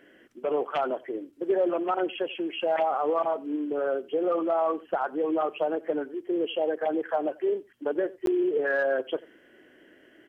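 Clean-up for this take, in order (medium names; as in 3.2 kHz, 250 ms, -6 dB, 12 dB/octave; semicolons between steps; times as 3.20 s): interpolate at 8.26 s, 12 ms; inverse comb 90 ms -23.5 dB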